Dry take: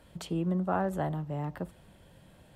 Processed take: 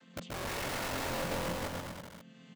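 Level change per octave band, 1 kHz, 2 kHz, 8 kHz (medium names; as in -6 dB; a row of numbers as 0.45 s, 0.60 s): -3.0 dB, +6.5 dB, +10.5 dB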